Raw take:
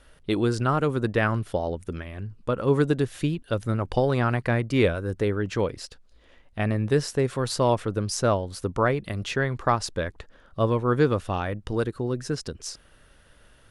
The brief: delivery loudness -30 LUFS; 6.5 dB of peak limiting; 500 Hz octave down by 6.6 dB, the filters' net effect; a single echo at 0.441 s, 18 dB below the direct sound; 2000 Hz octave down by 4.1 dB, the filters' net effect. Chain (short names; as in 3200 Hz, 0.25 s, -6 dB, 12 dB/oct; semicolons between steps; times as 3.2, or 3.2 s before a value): bell 500 Hz -8 dB; bell 2000 Hz -5 dB; limiter -17 dBFS; echo 0.441 s -18 dB